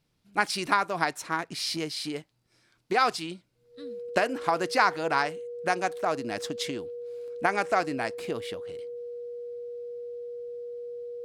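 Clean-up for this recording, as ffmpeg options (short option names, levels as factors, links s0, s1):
-af "bandreject=f=480:w=30"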